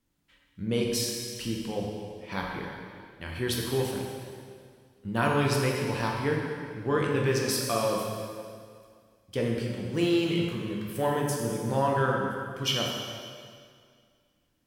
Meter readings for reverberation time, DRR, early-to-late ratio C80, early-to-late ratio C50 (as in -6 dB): 2.1 s, -1.0 dB, 2.5 dB, 1.5 dB